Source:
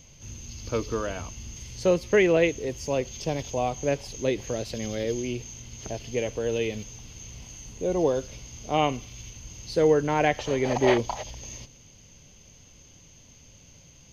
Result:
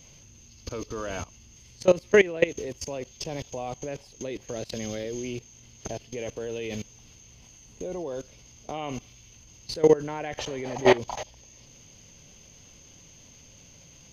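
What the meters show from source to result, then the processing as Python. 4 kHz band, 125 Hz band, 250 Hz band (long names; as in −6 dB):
−1.5 dB, −5.5 dB, −3.5 dB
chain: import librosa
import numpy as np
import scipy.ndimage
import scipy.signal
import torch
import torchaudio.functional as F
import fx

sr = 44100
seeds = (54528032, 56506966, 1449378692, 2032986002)

y = fx.low_shelf(x, sr, hz=110.0, db=-5.5)
y = fx.level_steps(y, sr, step_db=19)
y = y * 10.0 ** (5.0 / 20.0)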